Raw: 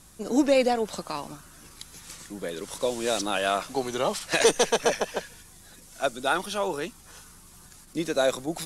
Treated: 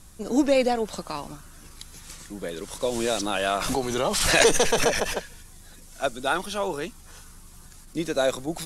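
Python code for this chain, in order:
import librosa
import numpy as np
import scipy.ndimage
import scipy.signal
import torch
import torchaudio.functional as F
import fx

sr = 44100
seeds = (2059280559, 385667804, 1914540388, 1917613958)

y = fx.low_shelf(x, sr, hz=79.0, db=10.5)
y = fx.pre_swell(y, sr, db_per_s=34.0, at=(2.87, 5.13), fade=0.02)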